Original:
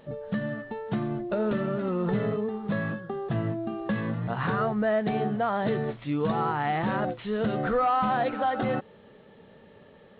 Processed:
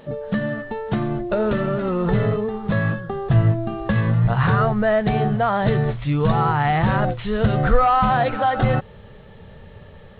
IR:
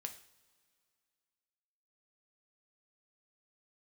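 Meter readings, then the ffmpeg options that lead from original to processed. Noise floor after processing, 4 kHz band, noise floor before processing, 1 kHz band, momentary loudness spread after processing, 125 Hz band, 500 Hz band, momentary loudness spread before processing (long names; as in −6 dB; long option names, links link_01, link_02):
−43 dBFS, +8.0 dB, −53 dBFS, +7.5 dB, 7 LU, +13.5 dB, +6.0 dB, 7 LU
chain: -af "asubboost=boost=11.5:cutoff=79,volume=8dB"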